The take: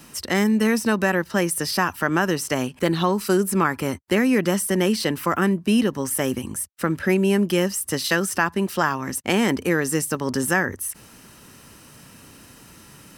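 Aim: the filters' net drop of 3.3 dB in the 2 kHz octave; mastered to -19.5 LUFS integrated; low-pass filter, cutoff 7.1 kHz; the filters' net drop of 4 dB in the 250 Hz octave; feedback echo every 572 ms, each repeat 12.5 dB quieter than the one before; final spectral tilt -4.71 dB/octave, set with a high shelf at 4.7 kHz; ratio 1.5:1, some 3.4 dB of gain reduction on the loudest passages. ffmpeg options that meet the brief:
-af "lowpass=7100,equalizer=f=250:t=o:g=-5.5,equalizer=f=2000:t=o:g=-3.5,highshelf=f=4700:g=-3.5,acompressor=threshold=0.0447:ratio=1.5,aecho=1:1:572|1144|1716:0.237|0.0569|0.0137,volume=2.66"

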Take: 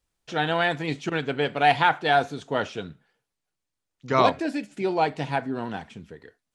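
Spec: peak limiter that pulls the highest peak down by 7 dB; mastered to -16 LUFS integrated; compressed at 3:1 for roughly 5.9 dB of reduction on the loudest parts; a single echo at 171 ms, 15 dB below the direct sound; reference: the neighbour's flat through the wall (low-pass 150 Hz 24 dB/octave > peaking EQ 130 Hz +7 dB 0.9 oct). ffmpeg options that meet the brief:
-af "acompressor=threshold=0.0794:ratio=3,alimiter=limit=0.141:level=0:latency=1,lowpass=f=150:w=0.5412,lowpass=f=150:w=1.3066,equalizer=f=130:t=o:w=0.9:g=7,aecho=1:1:171:0.178,volume=15"

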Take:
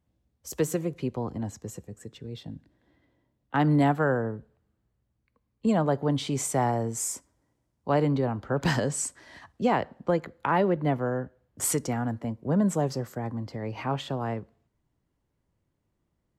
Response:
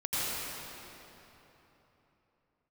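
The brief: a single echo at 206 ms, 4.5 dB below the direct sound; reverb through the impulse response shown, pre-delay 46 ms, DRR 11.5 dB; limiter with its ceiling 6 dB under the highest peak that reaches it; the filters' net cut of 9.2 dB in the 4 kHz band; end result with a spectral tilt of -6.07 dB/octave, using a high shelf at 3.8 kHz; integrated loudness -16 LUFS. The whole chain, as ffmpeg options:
-filter_complex "[0:a]highshelf=f=3800:g=-8.5,equalizer=f=4000:t=o:g=-7.5,alimiter=limit=0.106:level=0:latency=1,aecho=1:1:206:0.596,asplit=2[s0][s1];[1:a]atrim=start_sample=2205,adelay=46[s2];[s1][s2]afir=irnorm=-1:irlink=0,volume=0.0944[s3];[s0][s3]amix=inputs=2:normalize=0,volume=5.01"

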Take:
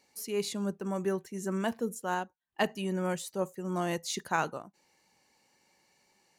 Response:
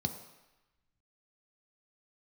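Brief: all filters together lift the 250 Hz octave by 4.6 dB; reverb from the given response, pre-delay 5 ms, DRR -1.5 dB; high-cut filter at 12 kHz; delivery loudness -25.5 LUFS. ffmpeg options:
-filter_complex "[0:a]lowpass=12000,equalizer=f=250:t=o:g=7,asplit=2[s0][s1];[1:a]atrim=start_sample=2205,adelay=5[s2];[s1][s2]afir=irnorm=-1:irlink=0,volume=0.891[s3];[s0][s3]amix=inputs=2:normalize=0,volume=0.562"

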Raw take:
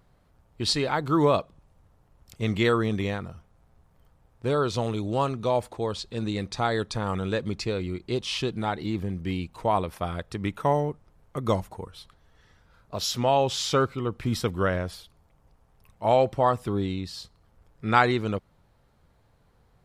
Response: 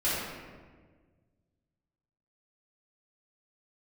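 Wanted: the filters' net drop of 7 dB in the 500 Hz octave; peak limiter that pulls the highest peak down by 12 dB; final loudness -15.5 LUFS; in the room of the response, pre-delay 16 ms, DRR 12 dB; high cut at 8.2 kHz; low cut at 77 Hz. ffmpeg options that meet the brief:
-filter_complex "[0:a]highpass=77,lowpass=8200,equalizer=f=500:t=o:g=-9,alimiter=limit=0.126:level=0:latency=1,asplit=2[s0][s1];[1:a]atrim=start_sample=2205,adelay=16[s2];[s1][s2]afir=irnorm=-1:irlink=0,volume=0.0708[s3];[s0][s3]amix=inputs=2:normalize=0,volume=5.96"

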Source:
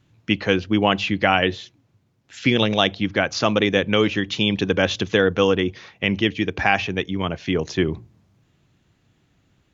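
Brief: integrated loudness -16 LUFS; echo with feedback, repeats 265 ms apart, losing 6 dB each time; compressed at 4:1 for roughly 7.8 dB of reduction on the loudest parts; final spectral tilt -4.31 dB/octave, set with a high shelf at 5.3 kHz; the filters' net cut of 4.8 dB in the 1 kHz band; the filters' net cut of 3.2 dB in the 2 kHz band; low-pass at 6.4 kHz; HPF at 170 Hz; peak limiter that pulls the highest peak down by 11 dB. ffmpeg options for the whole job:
-af "highpass=170,lowpass=6400,equalizer=f=1000:t=o:g=-6.5,equalizer=f=2000:t=o:g=-3,highshelf=f=5300:g=5,acompressor=threshold=0.0631:ratio=4,alimiter=limit=0.0841:level=0:latency=1,aecho=1:1:265|530|795|1060|1325|1590:0.501|0.251|0.125|0.0626|0.0313|0.0157,volume=6.31"

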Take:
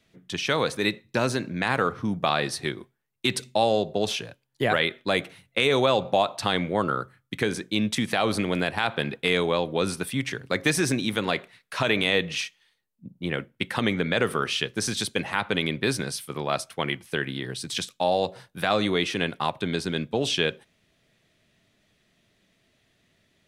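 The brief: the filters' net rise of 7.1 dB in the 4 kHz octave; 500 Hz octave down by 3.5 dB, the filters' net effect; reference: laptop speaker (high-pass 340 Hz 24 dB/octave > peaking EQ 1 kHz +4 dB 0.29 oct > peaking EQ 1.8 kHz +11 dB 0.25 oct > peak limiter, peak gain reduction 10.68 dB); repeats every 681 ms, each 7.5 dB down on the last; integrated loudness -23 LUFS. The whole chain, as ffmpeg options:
-af "highpass=f=340:w=0.5412,highpass=f=340:w=1.3066,equalizer=f=500:t=o:g=-4,equalizer=f=1000:t=o:w=0.29:g=4,equalizer=f=1800:t=o:w=0.25:g=11,equalizer=f=4000:t=o:g=8.5,aecho=1:1:681|1362|2043|2724|3405:0.422|0.177|0.0744|0.0312|0.0131,volume=1.26,alimiter=limit=0.299:level=0:latency=1"

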